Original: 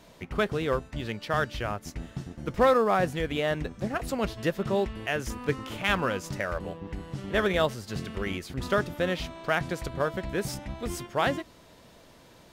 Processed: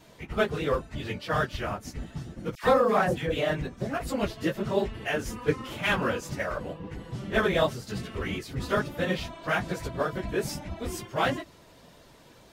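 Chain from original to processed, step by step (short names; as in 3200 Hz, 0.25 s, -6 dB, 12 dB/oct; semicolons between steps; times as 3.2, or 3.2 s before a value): phase scrambler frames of 50 ms; 2.55–3.37 dispersion lows, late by 88 ms, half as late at 1200 Hz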